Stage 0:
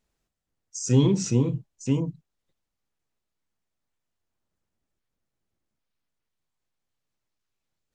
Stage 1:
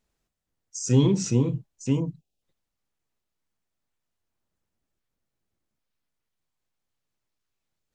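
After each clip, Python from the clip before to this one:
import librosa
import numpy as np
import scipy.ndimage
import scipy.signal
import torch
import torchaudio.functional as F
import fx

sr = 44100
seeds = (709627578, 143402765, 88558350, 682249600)

y = fx.spec_erase(x, sr, start_s=2.18, length_s=0.24, low_hz=860.0, high_hz=2400.0)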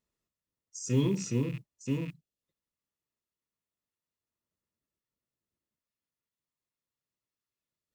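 y = fx.rattle_buzz(x, sr, strikes_db=-33.0, level_db=-29.0)
y = fx.notch_comb(y, sr, f0_hz=780.0)
y = fx.mod_noise(y, sr, seeds[0], snr_db=35)
y = F.gain(torch.from_numpy(y), -7.0).numpy()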